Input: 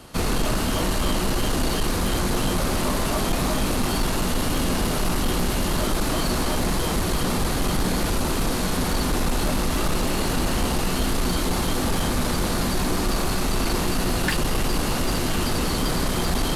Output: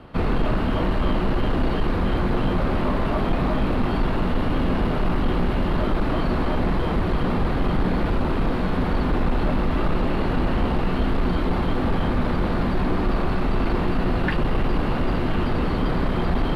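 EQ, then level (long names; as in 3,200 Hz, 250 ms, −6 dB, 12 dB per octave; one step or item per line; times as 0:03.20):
high-frequency loss of the air 460 metres
+2.5 dB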